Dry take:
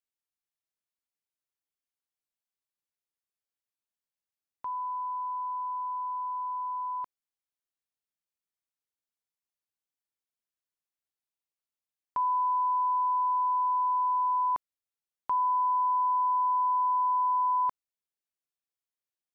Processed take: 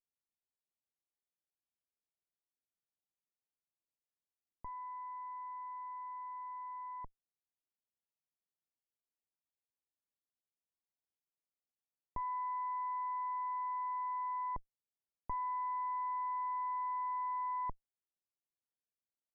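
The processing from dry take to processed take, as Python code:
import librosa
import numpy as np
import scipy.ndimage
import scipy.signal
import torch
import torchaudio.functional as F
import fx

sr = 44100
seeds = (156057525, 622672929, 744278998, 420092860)

y = fx.lower_of_two(x, sr, delay_ms=0.31)
y = scipy.signal.sosfilt(scipy.signal.butter(4, 1100.0, 'lowpass', fs=sr, output='sos'), y)
y = y * librosa.db_to_amplitude(-4.5)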